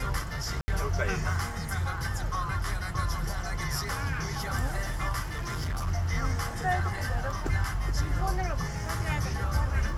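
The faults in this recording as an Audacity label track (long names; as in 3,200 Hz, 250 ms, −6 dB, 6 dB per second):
0.610000	0.680000	drop-out 70 ms
5.320000	5.880000	clipping −28 dBFS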